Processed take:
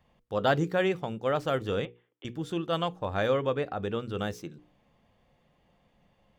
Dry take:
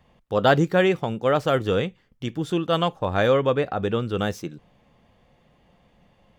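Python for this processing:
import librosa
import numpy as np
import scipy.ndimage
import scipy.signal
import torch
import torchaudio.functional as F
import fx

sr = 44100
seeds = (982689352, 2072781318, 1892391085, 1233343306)

y = fx.cheby1_bandpass(x, sr, low_hz=300.0, high_hz=3500.0, order=5, at=(1.85, 2.25))
y = fx.hum_notches(y, sr, base_hz=60, count=8)
y = y * 10.0 ** (-7.0 / 20.0)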